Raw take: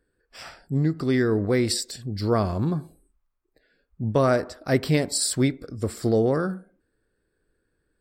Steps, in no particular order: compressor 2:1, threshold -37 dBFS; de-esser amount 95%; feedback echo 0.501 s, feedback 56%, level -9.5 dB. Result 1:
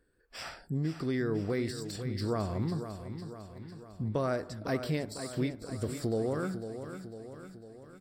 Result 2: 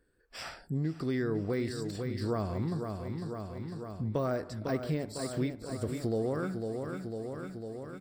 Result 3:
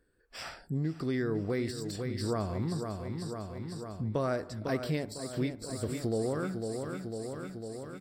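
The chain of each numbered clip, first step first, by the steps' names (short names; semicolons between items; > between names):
compressor > de-esser > feedback echo; de-esser > feedback echo > compressor; feedback echo > compressor > de-esser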